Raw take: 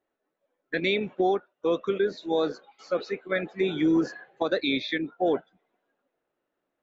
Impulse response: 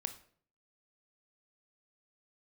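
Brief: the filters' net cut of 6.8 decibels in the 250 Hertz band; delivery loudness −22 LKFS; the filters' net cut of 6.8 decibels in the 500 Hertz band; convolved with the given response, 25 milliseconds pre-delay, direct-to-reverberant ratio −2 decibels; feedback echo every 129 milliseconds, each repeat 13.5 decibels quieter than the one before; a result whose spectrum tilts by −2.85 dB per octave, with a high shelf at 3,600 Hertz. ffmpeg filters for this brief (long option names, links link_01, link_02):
-filter_complex "[0:a]equalizer=frequency=250:width_type=o:gain=-7,equalizer=frequency=500:width_type=o:gain=-6,highshelf=frequency=3600:gain=-5.5,aecho=1:1:129|258:0.211|0.0444,asplit=2[link_01][link_02];[1:a]atrim=start_sample=2205,adelay=25[link_03];[link_02][link_03]afir=irnorm=-1:irlink=0,volume=3dB[link_04];[link_01][link_04]amix=inputs=2:normalize=0,volume=6dB"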